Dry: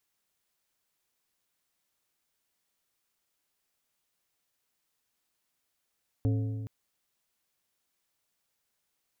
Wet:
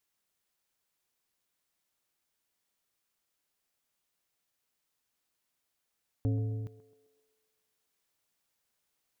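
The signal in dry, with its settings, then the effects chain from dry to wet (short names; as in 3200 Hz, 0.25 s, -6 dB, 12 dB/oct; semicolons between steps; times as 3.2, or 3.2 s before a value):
metal hit plate, length 0.42 s, lowest mode 109 Hz, decay 1.93 s, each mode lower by 7 dB, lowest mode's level -23 dB
vocal rider; narrowing echo 0.131 s, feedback 58%, band-pass 490 Hz, level -11 dB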